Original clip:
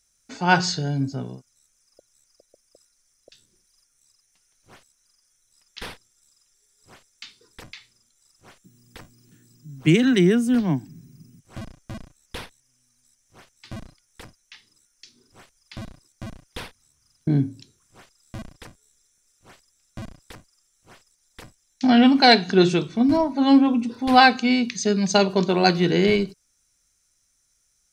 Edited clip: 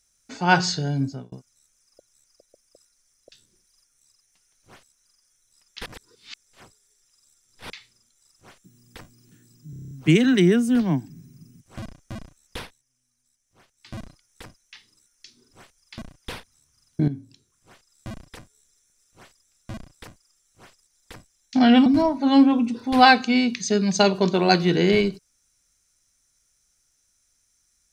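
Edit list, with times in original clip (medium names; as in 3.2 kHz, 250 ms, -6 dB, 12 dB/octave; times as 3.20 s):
1.05–1.32 s: fade out
5.86–7.70 s: reverse
9.70 s: stutter 0.03 s, 8 plays
12.38–13.75 s: dip -8 dB, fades 0.25 s
15.78–16.27 s: delete
17.36–18.37 s: fade in, from -12.5 dB
22.14–23.01 s: delete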